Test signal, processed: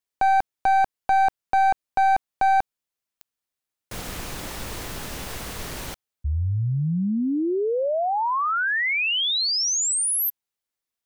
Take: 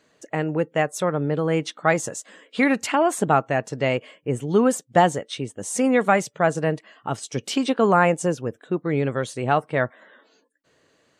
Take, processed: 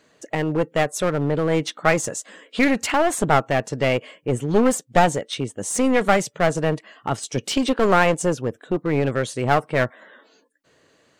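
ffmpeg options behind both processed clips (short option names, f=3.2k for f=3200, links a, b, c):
-af "aeval=exprs='clip(val(0),-1,0.0668)':c=same,volume=3.5dB"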